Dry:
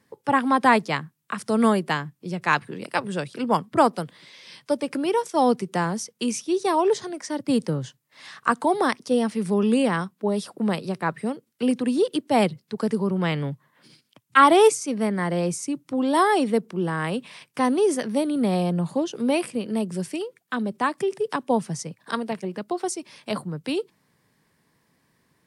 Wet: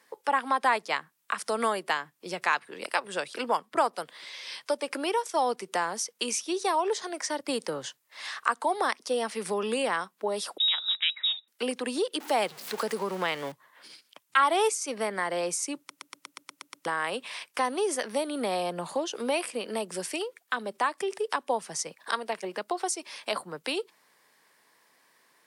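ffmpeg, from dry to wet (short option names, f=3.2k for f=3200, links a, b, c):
-filter_complex "[0:a]asettb=1/sr,asplit=3[a][b][c];[a]atrim=end=10.584[d];[b]atrim=start=10.58:end=11.48,asetpts=PTS-STARTPTS,afade=t=in:d=0.004:c=qsin,afade=t=out:st=0.896:d=0.004:c=qsin,lowpass=f=3.4k:t=q:w=0.5098,lowpass=f=3.4k:t=q:w=0.6013,lowpass=f=3.4k:t=q:w=0.9,lowpass=f=3.4k:t=q:w=2.563,afreqshift=-4000[e];[c]atrim=start=11.476[f];[d][e]acrossfade=d=0.004:c1=hsin:c2=qsin[g];[g][f]acrossfade=d=0.004:c1=qsin:c2=hsin,asettb=1/sr,asplit=3[h][i][j];[h]atrim=end=12.204[k];[i]atrim=start=12.2:end=13.52,asetpts=PTS-STARTPTS,afade=t=in:d=0.004:c=qsin,afade=t=out:st=1.316:d=0.004:c=qsin,aeval=exprs='val(0)+0.5*0.0158*sgn(val(0))':c=same[l];[j]atrim=start=13.516[m];[k][l]acrossfade=d=0.004:c1=hsin:c2=qsin[n];[n][m]acrossfade=d=0.004:c1=qsin:c2=hsin,asplit=10[o][p][q][r][s][t][u][v][w][x];[o]atrim=end=15.902[y];[p]atrim=start=15.778:end=15.902[z];[q]atrim=start=15.778:end=15.902[aa];[r]atrim=start=15.778:end=15.902[ab];[s]atrim=start=15.778:end=15.902[ac];[t]atrim=start=15.778:end=15.902[ad];[u]atrim=start=15.778:end=15.902[ae];[v]atrim=start=15.778:end=15.902[af];[w]atrim=start=15.778:end=15.902[ag];[x]atrim=start=16.858[ah];[y][z]acrossfade=d=0.004:c1=hsin:c2=hsin[ai];[ai][aa]acrossfade=d=0.004:c1=hsin:c2=hsin[aj];[aj][ab]acrossfade=d=0.004:c1=hsin:c2=hsin[ak];[ak][ac]acrossfade=d=0.004:c1=hsin:c2=hsin[al];[al][ad]acrossfade=d=0.004:c1=hsin:c2=hsin[am];[am][ae]acrossfade=d=0.004:c1=hsin:c2=hsin[an];[an][af]acrossfade=d=0.004:c1=hsin:c2=hsin[ao];[ao][ag]acrossfade=d=0.004:c1=hsin:c2=hsin[ap];[ap][ah]acrossfade=d=0.004:c1=hsin:c2=hsin,highpass=580,acompressor=threshold=-35dB:ratio=2,volume=5.5dB"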